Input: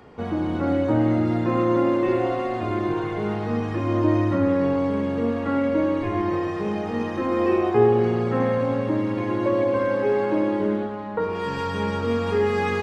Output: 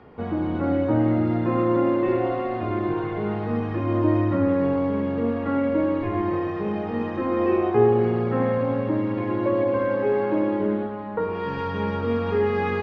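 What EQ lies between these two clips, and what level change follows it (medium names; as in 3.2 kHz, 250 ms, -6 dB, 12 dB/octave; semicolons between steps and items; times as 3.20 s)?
distance through air 240 m; 0.0 dB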